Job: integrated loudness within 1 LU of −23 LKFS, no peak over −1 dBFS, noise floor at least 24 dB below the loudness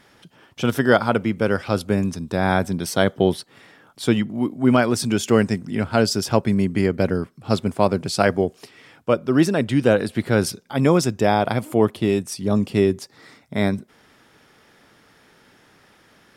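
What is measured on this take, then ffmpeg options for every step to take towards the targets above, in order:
integrated loudness −21.0 LKFS; sample peak −2.0 dBFS; target loudness −23.0 LKFS
→ -af "volume=-2dB"

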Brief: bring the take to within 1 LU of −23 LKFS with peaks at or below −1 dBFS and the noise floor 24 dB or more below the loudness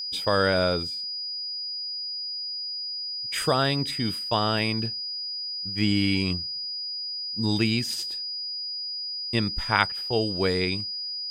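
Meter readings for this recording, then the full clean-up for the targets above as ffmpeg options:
interfering tone 4,900 Hz; level of the tone −30 dBFS; integrated loudness −26.5 LKFS; sample peak −3.5 dBFS; target loudness −23.0 LKFS
→ -af "bandreject=frequency=4900:width=30"
-af "volume=3.5dB,alimiter=limit=-1dB:level=0:latency=1"

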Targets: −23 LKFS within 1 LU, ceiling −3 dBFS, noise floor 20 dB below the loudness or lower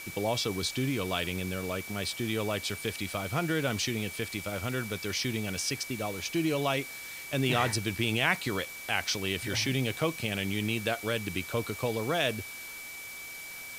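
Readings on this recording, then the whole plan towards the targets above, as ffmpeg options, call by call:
interfering tone 2,300 Hz; level of the tone −42 dBFS; background noise floor −43 dBFS; target noise floor −51 dBFS; integrated loudness −31.0 LKFS; sample peak −12.5 dBFS; target loudness −23.0 LKFS
→ -af "bandreject=frequency=2300:width=30"
-af "afftdn=noise_reduction=8:noise_floor=-43"
-af "volume=8dB"

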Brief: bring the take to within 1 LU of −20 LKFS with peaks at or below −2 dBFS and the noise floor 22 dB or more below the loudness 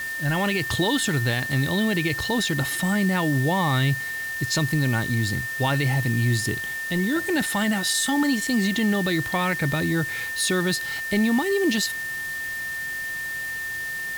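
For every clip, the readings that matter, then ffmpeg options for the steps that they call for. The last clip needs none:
interfering tone 1,800 Hz; level of the tone −28 dBFS; background noise floor −31 dBFS; target noise floor −46 dBFS; integrated loudness −23.5 LKFS; sample peak −12.0 dBFS; target loudness −20.0 LKFS
→ -af "bandreject=frequency=1800:width=30"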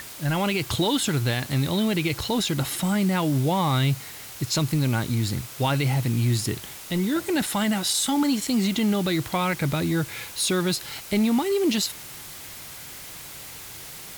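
interfering tone none found; background noise floor −40 dBFS; target noise floor −46 dBFS
→ -af "afftdn=noise_reduction=6:noise_floor=-40"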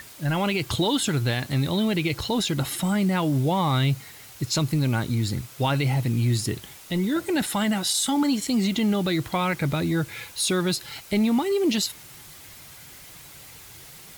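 background noise floor −46 dBFS; target noise floor −47 dBFS
→ -af "afftdn=noise_reduction=6:noise_floor=-46"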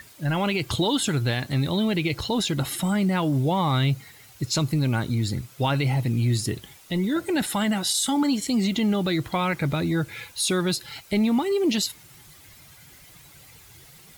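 background noise floor −50 dBFS; integrated loudness −24.5 LKFS; sample peak −13.5 dBFS; target loudness −20.0 LKFS
→ -af "volume=4.5dB"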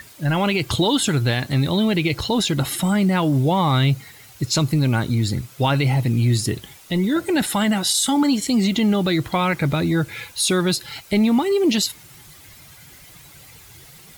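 integrated loudness −20.0 LKFS; sample peak −9.0 dBFS; background noise floor −46 dBFS

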